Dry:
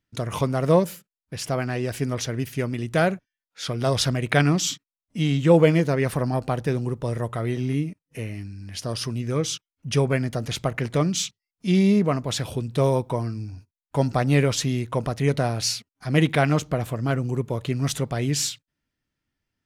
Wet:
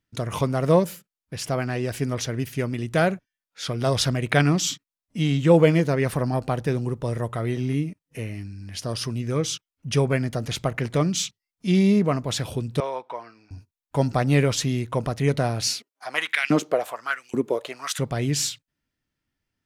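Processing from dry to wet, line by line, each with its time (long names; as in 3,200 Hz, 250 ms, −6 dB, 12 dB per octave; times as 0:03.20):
0:12.80–0:13.51: band-pass filter 790–3,100 Hz
0:15.67–0:17.99: auto-filter high-pass saw up 1.2 Hz 220–2,900 Hz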